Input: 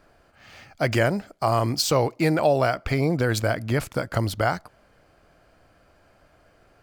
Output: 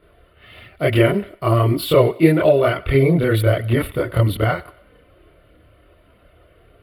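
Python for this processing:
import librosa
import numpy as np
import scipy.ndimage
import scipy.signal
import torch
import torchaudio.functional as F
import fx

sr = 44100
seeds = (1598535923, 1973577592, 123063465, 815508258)

p1 = fx.curve_eq(x, sr, hz=(150.0, 230.0, 370.0, 580.0, 910.0, 3500.0, 6300.0, 11000.0, 16000.0), db=(0, -8, 4, 1, -1, 8, -27, 11, -1))
p2 = fx.chorus_voices(p1, sr, voices=6, hz=0.42, base_ms=27, depth_ms=2.8, mix_pct=60)
p3 = fx.low_shelf(p2, sr, hz=390.0, db=10.5)
p4 = fx.notch_comb(p3, sr, f0_hz=820.0)
p5 = p4 + fx.echo_thinned(p4, sr, ms=93, feedback_pct=45, hz=420.0, wet_db=-20.0, dry=0)
y = p5 * librosa.db_to_amplitude(4.0)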